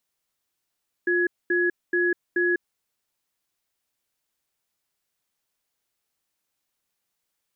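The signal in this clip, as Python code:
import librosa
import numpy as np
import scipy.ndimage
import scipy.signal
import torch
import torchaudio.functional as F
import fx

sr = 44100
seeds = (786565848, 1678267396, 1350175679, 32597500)

y = fx.cadence(sr, length_s=1.64, low_hz=353.0, high_hz=1680.0, on_s=0.2, off_s=0.23, level_db=-22.0)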